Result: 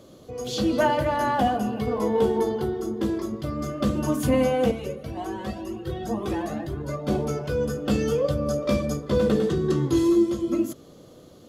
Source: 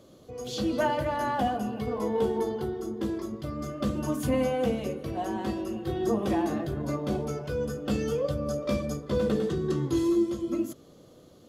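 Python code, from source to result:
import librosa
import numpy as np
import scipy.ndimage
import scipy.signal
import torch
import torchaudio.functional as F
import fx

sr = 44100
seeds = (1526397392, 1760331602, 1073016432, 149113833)

y = fx.comb_cascade(x, sr, direction='rising', hz=2.0, at=(4.71, 7.08))
y = y * 10.0 ** (5.0 / 20.0)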